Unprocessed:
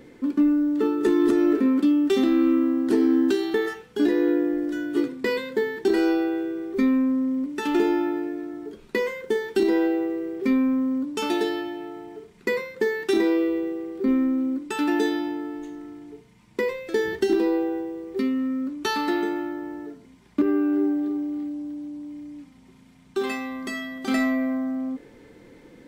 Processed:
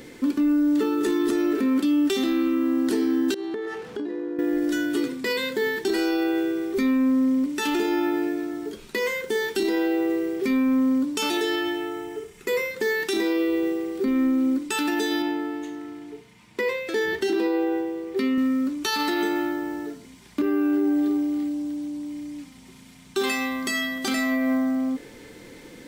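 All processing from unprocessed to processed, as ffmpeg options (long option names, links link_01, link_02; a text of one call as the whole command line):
ffmpeg -i in.wav -filter_complex "[0:a]asettb=1/sr,asplit=3[link_01][link_02][link_03];[link_01]atrim=end=3.344[link_04];[link_02]atrim=start=3.34:end=4.39,asetpts=PTS-STARTPTS,afade=type=in:duration=0.004:curve=qsin,afade=type=out:start_time=1.046:duration=0.004:curve=qsin,aeval=exprs='val(0)+0.5*0.0119*sgn(val(0))':channel_layout=same,bandpass=frequency=390:width_type=q:width=0.52,acompressor=threshold=-31dB:ratio=8:attack=3.2:release=140:knee=1:detection=peak[link_05];[link_03]atrim=start=4.386[link_06];[link_04][link_05]acrossfade=duration=0.004:curve1=hsin:curve2=qsin[link_07];[link_07][link_06]acrossfade=duration=0.004:curve1=qsin:curve2=hsin,asettb=1/sr,asplit=3[link_08][link_09][link_10];[link_08]atrim=end=11.374[link_11];[link_09]atrim=start=11.37:end=12.71,asetpts=PTS-STARTPTS,afade=type=in:duration=0.004:curve=qsin,afade=type=out:start_time=1.336:duration=0.004:curve=qsin,equalizer=frequency=4300:width_type=o:width=0.45:gain=-7.5,bandreject=frequency=910:width=14,aecho=1:1:2.3:0.48,atrim=end_sample=59094[link_12];[link_10]atrim=start=12.706[link_13];[link_11][link_12]acrossfade=duration=0.004:curve1=hsin:curve2=qsin[link_14];[link_14][link_13]acrossfade=duration=0.004:curve1=qsin:curve2=hsin,asettb=1/sr,asplit=3[link_15][link_16][link_17];[link_15]atrim=end=15.224[link_18];[link_16]atrim=start=15.22:end=18.38,asetpts=PTS-STARTPTS,afade=type=in:duration=0.004:curve=qsin,afade=type=out:start_time=3.156:duration=0.004:curve=qsin,highpass=51,bass=frequency=250:gain=-4,treble=frequency=4000:gain=-8[link_19];[link_17]atrim=start=18.376[link_20];[link_18][link_19]acrossfade=duration=0.004:curve1=hsin:curve2=qsin[link_21];[link_21][link_20]acrossfade=duration=0.004:curve1=qsin:curve2=hsin,highshelf=frequency=2400:gain=11.5,alimiter=limit=-19.5dB:level=0:latency=1:release=80,volume=3.5dB" out.wav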